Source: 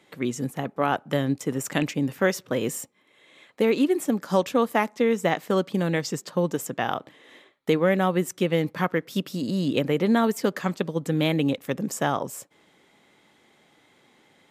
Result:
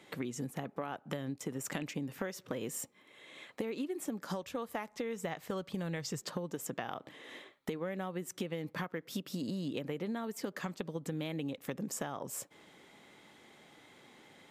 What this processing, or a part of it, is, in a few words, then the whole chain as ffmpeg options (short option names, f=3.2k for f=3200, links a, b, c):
serial compression, peaks first: -filter_complex "[0:a]asplit=3[a][b][c];[a]afade=t=out:st=4.42:d=0.02[d];[b]asubboost=boost=8.5:cutoff=82,afade=t=in:st=4.42:d=0.02,afade=t=out:st=6.22:d=0.02[e];[c]afade=t=in:st=6.22:d=0.02[f];[d][e][f]amix=inputs=3:normalize=0,acompressor=threshold=-31dB:ratio=6,acompressor=threshold=-39dB:ratio=2,volume=1dB"